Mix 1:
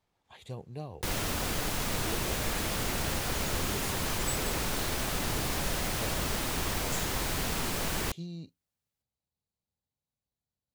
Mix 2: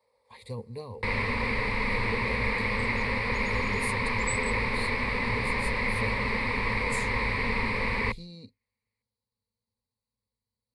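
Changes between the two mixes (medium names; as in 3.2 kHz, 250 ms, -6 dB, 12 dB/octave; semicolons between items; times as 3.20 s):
first sound: add resonant low-pass 2.4 kHz, resonance Q 2.2; second sound: add resonant high-pass 540 Hz, resonance Q 5.7; master: add rippled EQ curve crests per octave 0.93, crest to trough 16 dB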